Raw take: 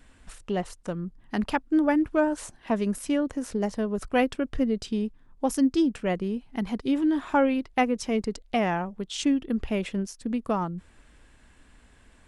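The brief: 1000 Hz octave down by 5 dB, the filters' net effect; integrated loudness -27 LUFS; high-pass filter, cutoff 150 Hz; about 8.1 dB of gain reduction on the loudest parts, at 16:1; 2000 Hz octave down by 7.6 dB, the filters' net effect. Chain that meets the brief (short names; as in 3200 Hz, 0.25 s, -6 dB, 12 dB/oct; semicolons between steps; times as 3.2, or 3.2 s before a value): HPF 150 Hz; bell 1000 Hz -5.5 dB; bell 2000 Hz -8 dB; compressor 16:1, threshold -27 dBFS; gain +6.5 dB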